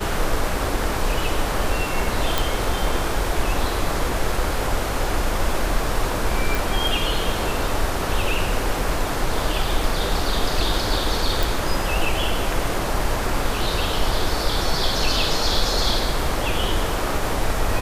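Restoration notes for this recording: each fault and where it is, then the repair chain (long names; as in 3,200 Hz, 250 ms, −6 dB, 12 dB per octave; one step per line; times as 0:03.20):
0:02.38: click
0:06.55: click
0:11.43: click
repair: click removal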